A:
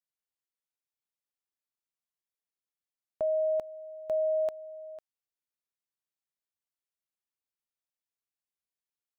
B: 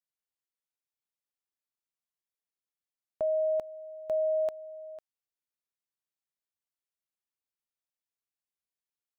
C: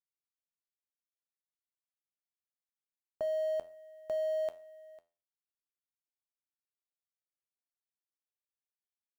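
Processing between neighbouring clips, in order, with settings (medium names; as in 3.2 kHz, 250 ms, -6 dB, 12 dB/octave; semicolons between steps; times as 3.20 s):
no audible change
companding laws mixed up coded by A; feedback comb 85 Hz, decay 0.37 s, harmonics all, mix 60%; trim +3 dB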